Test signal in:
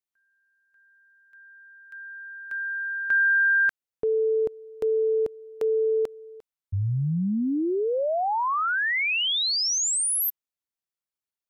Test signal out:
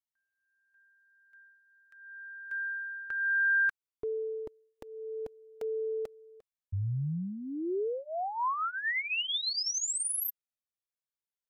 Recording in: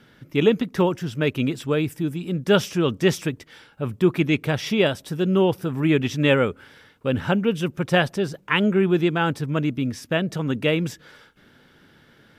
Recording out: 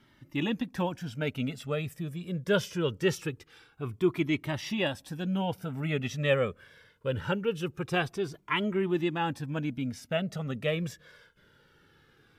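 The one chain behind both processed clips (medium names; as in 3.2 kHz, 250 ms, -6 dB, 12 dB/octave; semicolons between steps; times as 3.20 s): Shepard-style flanger falling 0.23 Hz; trim -3.5 dB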